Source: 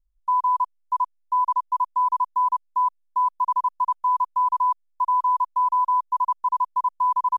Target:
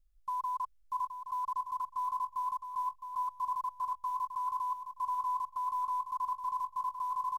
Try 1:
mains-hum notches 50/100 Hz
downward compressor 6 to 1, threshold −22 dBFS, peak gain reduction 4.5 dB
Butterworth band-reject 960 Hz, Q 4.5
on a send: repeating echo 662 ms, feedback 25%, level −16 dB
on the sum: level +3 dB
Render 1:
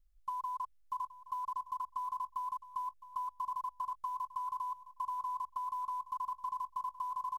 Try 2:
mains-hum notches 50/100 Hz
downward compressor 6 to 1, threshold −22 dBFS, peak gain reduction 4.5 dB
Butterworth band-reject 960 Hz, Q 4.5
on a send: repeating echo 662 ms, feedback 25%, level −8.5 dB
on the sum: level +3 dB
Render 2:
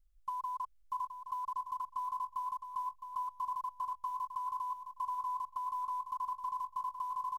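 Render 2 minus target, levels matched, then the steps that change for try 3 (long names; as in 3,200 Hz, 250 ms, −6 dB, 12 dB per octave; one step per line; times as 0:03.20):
downward compressor: peak gain reduction +4.5 dB
remove: downward compressor 6 to 1, threshold −22 dBFS, peak gain reduction 4.5 dB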